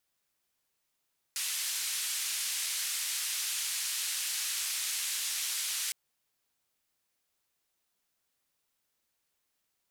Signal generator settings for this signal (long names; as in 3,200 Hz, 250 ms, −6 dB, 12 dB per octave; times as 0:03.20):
band-limited noise 2,200–11,000 Hz, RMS −34 dBFS 4.56 s